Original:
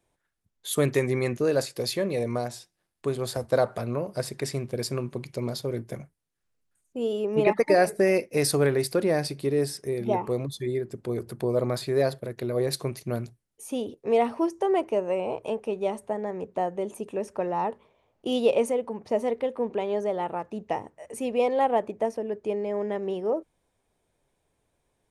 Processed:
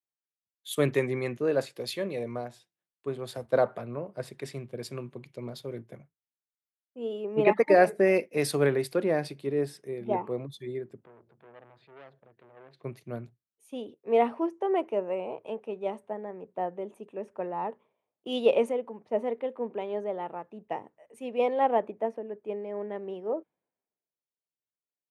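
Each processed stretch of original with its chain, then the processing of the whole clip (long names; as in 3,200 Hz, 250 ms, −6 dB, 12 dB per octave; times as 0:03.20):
0:11.04–0:12.84: low-pass filter 2,500 Hz + downward compressor 2 to 1, threshold −38 dBFS + saturating transformer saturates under 1,300 Hz
whole clip: high-pass filter 140 Hz; flat-topped bell 7,300 Hz −10 dB; multiband upward and downward expander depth 70%; level −4 dB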